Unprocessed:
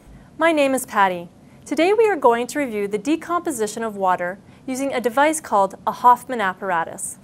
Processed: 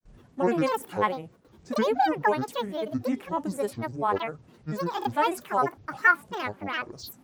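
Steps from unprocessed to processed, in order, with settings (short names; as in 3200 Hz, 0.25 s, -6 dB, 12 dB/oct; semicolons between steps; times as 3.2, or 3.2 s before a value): gate with hold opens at -38 dBFS; harmonic-percussive split percussive -8 dB; grains, spray 15 ms, pitch spread up and down by 12 st; gain -5.5 dB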